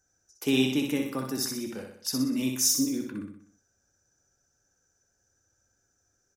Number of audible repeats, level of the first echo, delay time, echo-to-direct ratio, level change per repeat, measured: 5, -5.0 dB, 62 ms, -3.5 dB, -6.0 dB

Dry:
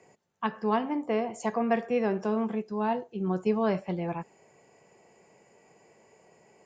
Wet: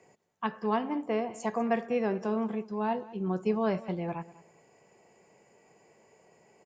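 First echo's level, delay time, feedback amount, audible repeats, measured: -19.0 dB, 0.196 s, 21%, 2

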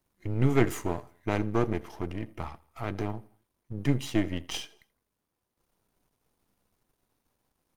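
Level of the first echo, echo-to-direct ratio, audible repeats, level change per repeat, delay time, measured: -23.5 dB, -22.5 dB, 2, -7.0 dB, 82 ms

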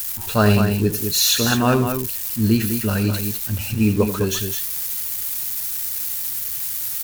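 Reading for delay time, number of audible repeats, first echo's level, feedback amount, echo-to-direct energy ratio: 86 ms, 2, -13.0 dB, no steady repeat, -6.0 dB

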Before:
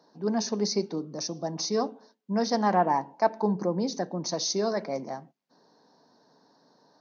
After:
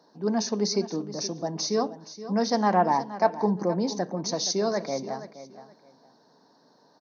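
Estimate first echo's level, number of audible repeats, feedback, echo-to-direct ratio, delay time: -14.0 dB, 2, 21%, -14.0 dB, 0.472 s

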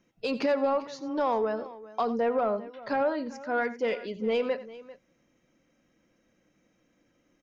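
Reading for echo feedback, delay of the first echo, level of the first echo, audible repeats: no steady repeat, 89 ms, -15.5 dB, 2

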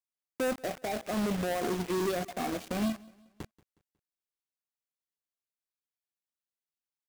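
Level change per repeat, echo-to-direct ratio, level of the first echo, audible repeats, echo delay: -7.5 dB, -22.5 dB, -23.5 dB, 2, 0.182 s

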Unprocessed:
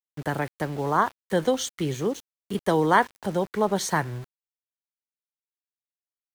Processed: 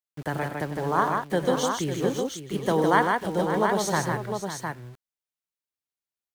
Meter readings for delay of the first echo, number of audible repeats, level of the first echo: 97 ms, 4, -12.0 dB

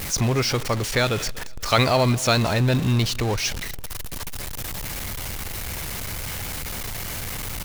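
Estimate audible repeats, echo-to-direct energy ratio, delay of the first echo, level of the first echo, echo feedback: 2, -21.5 dB, 0.24 s, -22.0 dB, 27%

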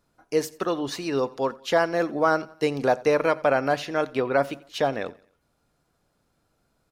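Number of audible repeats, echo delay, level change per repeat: 2, 88 ms, -7.0 dB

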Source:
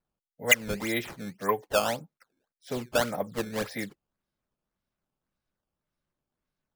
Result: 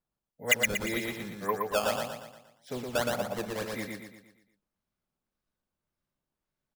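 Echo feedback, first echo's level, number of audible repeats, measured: 46%, -3.0 dB, 5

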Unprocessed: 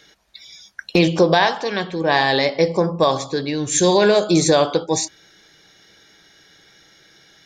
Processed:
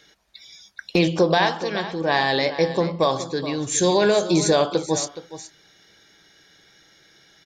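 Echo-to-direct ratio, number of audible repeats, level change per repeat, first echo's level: -13.5 dB, 1, no steady repeat, -13.5 dB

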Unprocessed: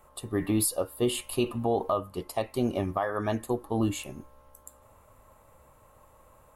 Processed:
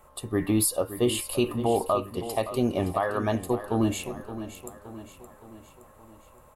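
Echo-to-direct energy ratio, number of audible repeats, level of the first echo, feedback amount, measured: -11.0 dB, 4, -12.5 dB, 51%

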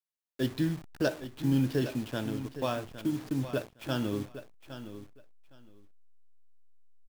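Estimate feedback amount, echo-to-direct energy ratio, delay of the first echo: 17%, -12.0 dB, 0.812 s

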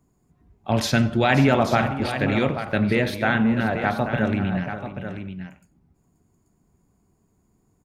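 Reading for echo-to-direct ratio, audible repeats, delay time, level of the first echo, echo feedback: -8.0 dB, 5, 91 ms, -21.0 dB, no steady repeat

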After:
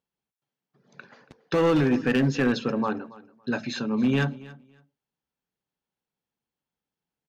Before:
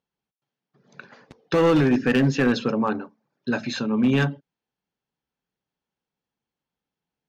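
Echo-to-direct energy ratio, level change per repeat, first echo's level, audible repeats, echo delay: -20.0 dB, -14.5 dB, -20.0 dB, 2, 0.28 s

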